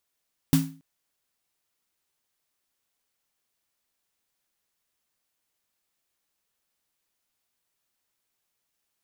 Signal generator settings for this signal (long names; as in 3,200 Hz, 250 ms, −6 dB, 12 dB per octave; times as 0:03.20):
synth snare length 0.28 s, tones 160 Hz, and 270 Hz, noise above 520 Hz, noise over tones −9.5 dB, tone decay 0.39 s, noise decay 0.31 s